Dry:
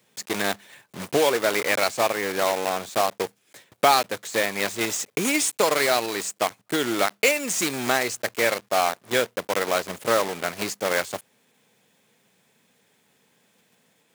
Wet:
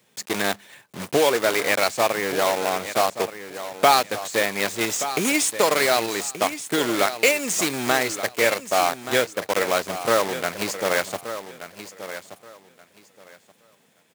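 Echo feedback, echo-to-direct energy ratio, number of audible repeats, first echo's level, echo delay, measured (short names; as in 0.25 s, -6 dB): 20%, -12.0 dB, 2, -12.0 dB, 1.177 s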